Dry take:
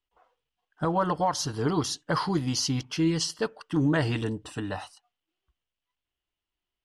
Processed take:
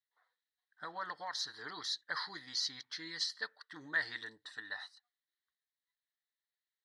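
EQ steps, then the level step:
pair of resonant band-passes 2,700 Hz, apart 1.1 octaves
+2.5 dB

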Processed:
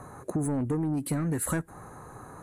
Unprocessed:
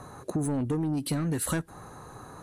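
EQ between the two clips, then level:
flat-topped bell 4,000 Hz −9.5 dB 1.3 octaves
0.0 dB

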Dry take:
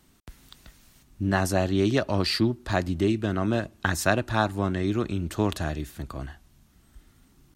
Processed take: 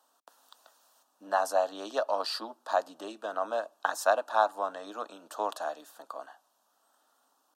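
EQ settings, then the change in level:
Butterworth high-pass 360 Hz 36 dB per octave
high-shelf EQ 2,700 Hz −10.5 dB
phaser with its sweep stopped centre 890 Hz, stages 4
+3.5 dB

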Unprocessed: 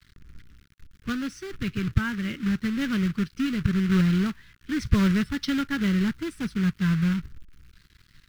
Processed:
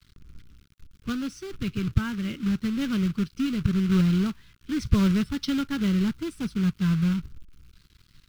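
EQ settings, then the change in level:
parametric band 1,800 Hz −9 dB 0.55 octaves
0.0 dB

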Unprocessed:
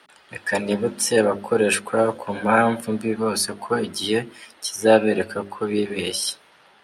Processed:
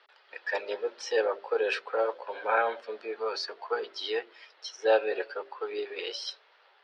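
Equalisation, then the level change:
elliptic band-pass filter 430–4,900 Hz, stop band 40 dB
−7.5 dB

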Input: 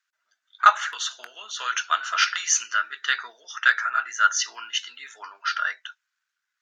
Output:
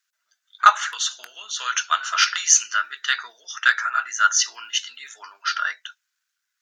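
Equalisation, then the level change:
dynamic equaliser 1,000 Hz, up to +5 dB, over −33 dBFS, Q 1.4
high-shelf EQ 2,500 Hz +8.5 dB
high-shelf EQ 5,500 Hz +4.5 dB
−3.5 dB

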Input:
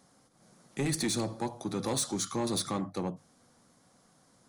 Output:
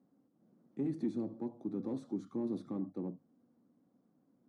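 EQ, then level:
resonant band-pass 270 Hz, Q 2.4
0.0 dB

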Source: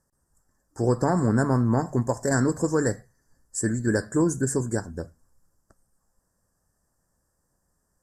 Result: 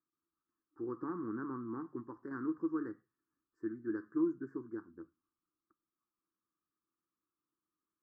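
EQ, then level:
pair of resonant band-passes 630 Hz, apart 1.9 octaves
high-frequency loss of the air 270 metres
−6.0 dB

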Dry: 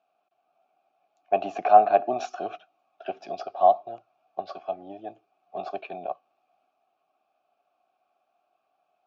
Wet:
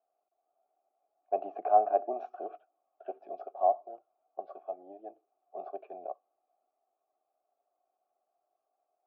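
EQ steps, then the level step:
four-pole ladder band-pass 540 Hz, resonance 30%
+3.5 dB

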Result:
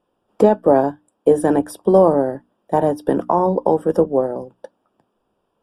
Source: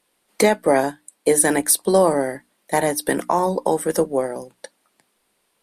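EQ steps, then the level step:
moving average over 21 samples
parametric band 100 Hz +9.5 dB 0.27 octaves
+4.5 dB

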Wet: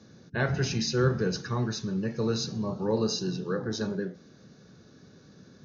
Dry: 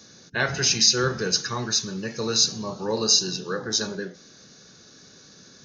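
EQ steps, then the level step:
high-pass filter 74 Hz
spectral tilt −3 dB per octave
high-shelf EQ 7,900 Hz −11.5 dB
−4.5 dB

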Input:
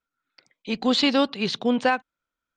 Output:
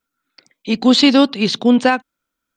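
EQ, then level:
parametric band 260 Hz +6 dB 1.2 octaves
high-shelf EQ 5,700 Hz +8.5 dB
+5.0 dB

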